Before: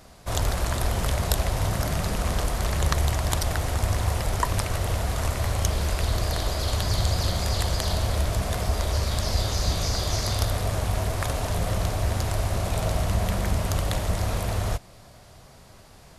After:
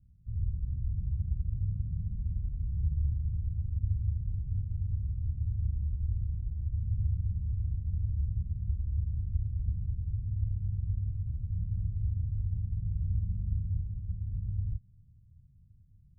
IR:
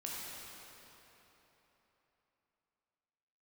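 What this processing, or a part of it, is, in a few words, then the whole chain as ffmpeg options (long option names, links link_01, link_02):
the neighbour's flat through the wall: -filter_complex "[0:a]lowpass=frequency=160:width=0.5412,lowpass=frequency=160:width=1.3066,equalizer=frequency=89:width_type=o:width=0.62:gain=5,asettb=1/sr,asplit=3[link_01][link_02][link_03];[link_01]atrim=end=13.814[link_04];[link_02]atrim=start=13.81:end=14.31,asetpts=PTS-STARTPTS,afade=type=in:duration=0.004:curve=qsin,afade=type=out:start_time=0.496:duration=0.004:curve=qsin,tiltshelf=frequency=760:gain=-3.5[link_05];[link_03]atrim=start=14.306[link_06];[link_04][link_05]acrossfade=duration=0.004:curve1=hsin:curve2=qsin[link_07];[link_07][link_06]acrossfade=duration=0.004:curve1=qsin:curve2=hsin,volume=-8dB"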